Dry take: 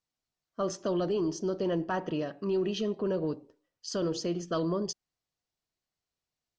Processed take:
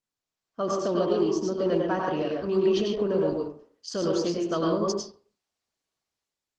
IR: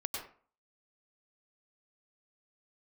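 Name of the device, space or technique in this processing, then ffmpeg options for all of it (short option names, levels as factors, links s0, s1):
far-field microphone of a smart speaker: -filter_complex "[1:a]atrim=start_sample=2205[s0];[0:a][s0]afir=irnorm=-1:irlink=0,highpass=f=120:p=1,dynaudnorm=f=120:g=7:m=3.16,volume=0.531" -ar 48000 -c:a libopus -b:a 16k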